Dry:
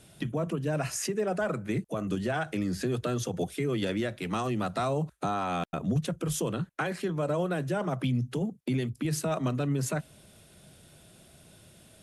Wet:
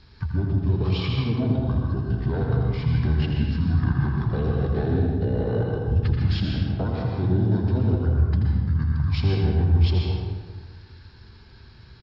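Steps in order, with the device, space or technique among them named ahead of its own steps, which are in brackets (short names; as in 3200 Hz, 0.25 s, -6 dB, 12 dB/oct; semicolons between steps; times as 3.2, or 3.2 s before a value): monster voice (pitch shift -8.5 st; formant shift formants -5 st; low shelf 180 Hz +7.5 dB; echo 82 ms -7.5 dB; reverb RT60 1.4 s, pre-delay 0.115 s, DRR -0.5 dB)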